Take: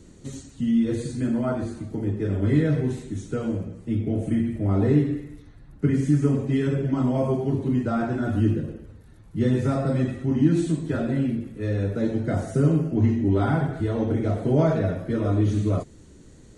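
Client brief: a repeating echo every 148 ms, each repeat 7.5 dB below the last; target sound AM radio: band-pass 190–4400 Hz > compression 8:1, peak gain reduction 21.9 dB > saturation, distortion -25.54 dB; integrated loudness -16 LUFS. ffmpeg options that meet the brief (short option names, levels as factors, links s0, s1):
-af "highpass=190,lowpass=4400,aecho=1:1:148|296|444|592|740:0.422|0.177|0.0744|0.0312|0.0131,acompressor=threshold=0.0141:ratio=8,asoftclip=threshold=0.0376,volume=18.8"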